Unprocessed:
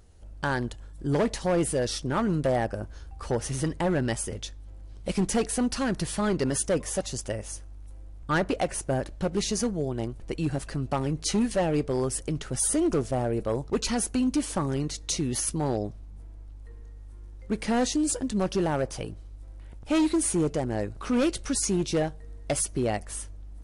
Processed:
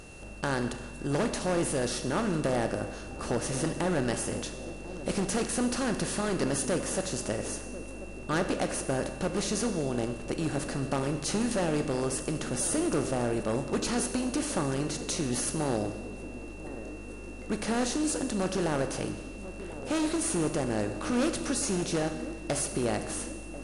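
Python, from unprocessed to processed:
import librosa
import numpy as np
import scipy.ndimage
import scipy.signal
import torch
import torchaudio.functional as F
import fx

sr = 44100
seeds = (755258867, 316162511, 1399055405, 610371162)

y = fx.bin_compress(x, sr, power=0.6)
y = fx.echo_banded(y, sr, ms=1040, feedback_pct=74, hz=370.0, wet_db=-13.0)
y = y + 10.0 ** (-46.0 / 20.0) * np.sin(2.0 * np.pi * 2700.0 * np.arange(len(y)) / sr)
y = fx.rev_schroeder(y, sr, rt60_s=1.3, comb_ms=29, drr_db=8.0)
y = y * 10.0 ** (-7.0 / 20.0)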